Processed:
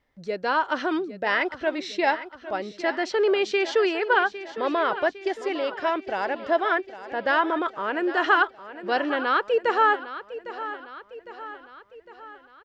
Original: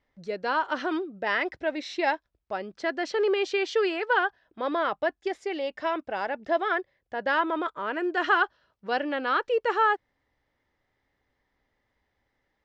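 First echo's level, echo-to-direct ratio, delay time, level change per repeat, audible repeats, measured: -13.5 dB, -12.0 dB, 806 ms, -5.5 dB, 4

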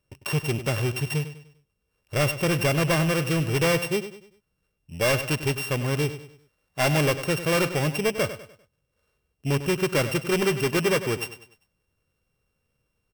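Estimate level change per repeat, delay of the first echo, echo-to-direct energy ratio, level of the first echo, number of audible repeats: -8.5 dB, 99 ms, -11.5 dB, -12.0 dB, 3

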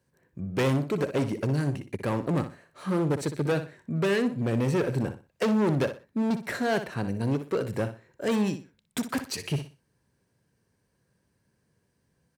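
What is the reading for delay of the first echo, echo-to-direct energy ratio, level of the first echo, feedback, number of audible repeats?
61 ms, -10.0 dB, -10.5 dB, 26%, 3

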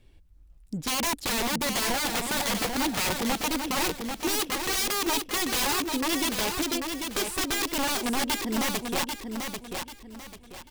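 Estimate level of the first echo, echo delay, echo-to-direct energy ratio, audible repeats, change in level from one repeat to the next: -5.5 dB, 791 ms, -5.0 dB, 3, -10.0 dB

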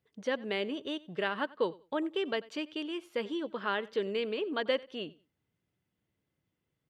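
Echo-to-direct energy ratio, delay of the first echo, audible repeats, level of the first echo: -21.5 dB, 92 ms, 2, -21.5 dB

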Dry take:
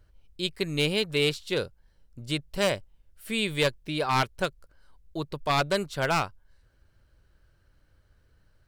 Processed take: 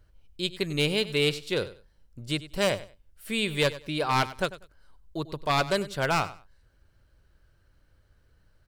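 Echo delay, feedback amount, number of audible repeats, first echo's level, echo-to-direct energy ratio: 96 ms, 21%, 2, -16.0 dB, -16.0 dB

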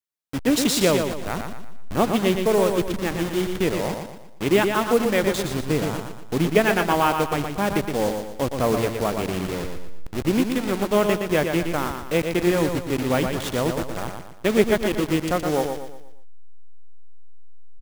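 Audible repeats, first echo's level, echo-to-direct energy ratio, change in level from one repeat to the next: 4, -6.0 dB, -5.0 dB, -7.5 dB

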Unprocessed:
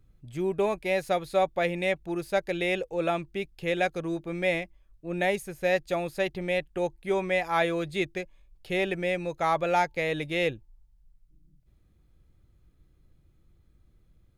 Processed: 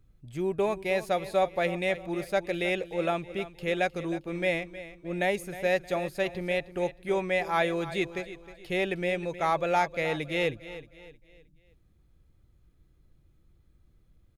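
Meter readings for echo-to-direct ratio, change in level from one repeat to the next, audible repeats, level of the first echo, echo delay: -14.0 dB, -8.5 dB, 3, -14.5 dB, 312 ms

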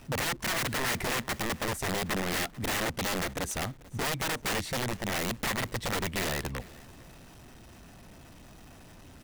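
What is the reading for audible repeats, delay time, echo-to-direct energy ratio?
2, 439 ms, -21.5 dB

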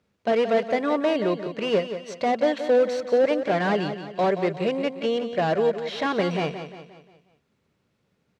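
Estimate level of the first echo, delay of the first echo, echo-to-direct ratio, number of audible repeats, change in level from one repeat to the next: -10.0 dB, 177 ms, -9.0 dB, 4, -7.0 dB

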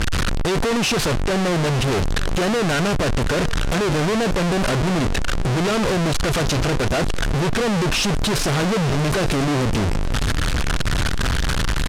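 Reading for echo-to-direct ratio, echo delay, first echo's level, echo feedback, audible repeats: -19.0 dB, 910 ms, -19.5 dB, 34%, 2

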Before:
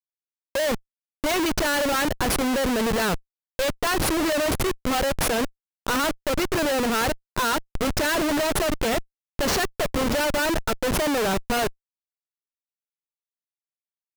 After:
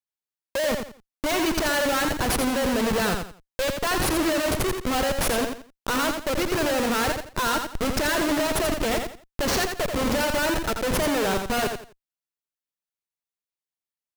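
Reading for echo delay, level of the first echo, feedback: 85 ms, -6.0 dB, 27%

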